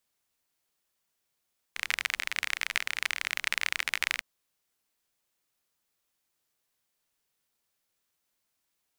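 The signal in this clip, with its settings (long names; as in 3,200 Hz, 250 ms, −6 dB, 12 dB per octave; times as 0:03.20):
rain-like ticks over hiss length 2.45 s, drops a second 34, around 2,100 Hz, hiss −28 dB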